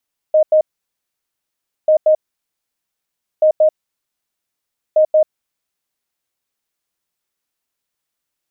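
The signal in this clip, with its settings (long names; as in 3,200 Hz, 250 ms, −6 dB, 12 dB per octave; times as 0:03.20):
beeps in groups sine 621 Hz, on 0.09 s, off 0.09 s, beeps 2, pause 1.27 s, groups 4, −7.5 dBFS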